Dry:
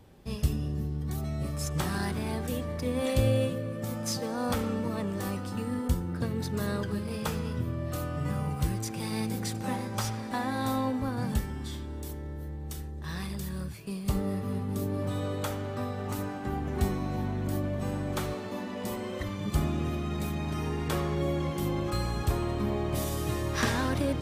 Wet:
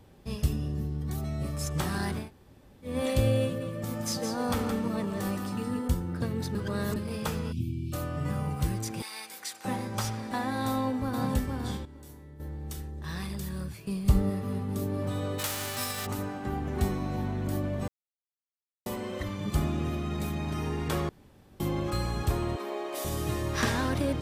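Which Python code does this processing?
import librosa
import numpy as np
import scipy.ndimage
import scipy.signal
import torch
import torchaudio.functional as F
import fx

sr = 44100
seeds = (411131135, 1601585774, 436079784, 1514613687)

y = fx.echo_single(x, sr, ms=169, db=-7.0, at=(3.6, 5.78), fade=0.02)
y = fx.brickwall_bandstop(y, sr, low_hz=390.0, high_hz=2200.0, at=(7.51, 7.92), fade=0.02)
y = fx.highpass(y, sr, hz=1100.0, slope=12, at=(9.02, 9.65))
y = fx.echo_throw(y, sr, start_s=10.67, length_s=0.64, ms=460, feedback_pct=25, wet_db=-4.5)
y = fx.comb_fb(y, sr, f0_hz=140.0, decay_s=0.33, harmonics='all', damping=0.0, mix_pct=80, at=(11.85, 12.4))
y = fx.low_shelf(y, sr, hz=130.0, db=11.0, at=(13.87, 14.3))
y = fx.envelope_flatten(y, sr, power=0.3, at=(15.38, 16.05), fade=0.02)
y = fx.highpass(y, sr, hz=370.0, slope=24, at=(22.56, 23.05))
y = fx.edit(y, sr, fx.room_tone_fill(start_s=2.23, length_s=0.66, crossfade_s=0.16),
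    fx.reverse_span(start_s=6.55, length_s=0.41),
    fx.silence(start_s=17.88, length_s=0.98),
    fx.room_tone_fill(start_s=21.09, length_s=0.51), tone=tone)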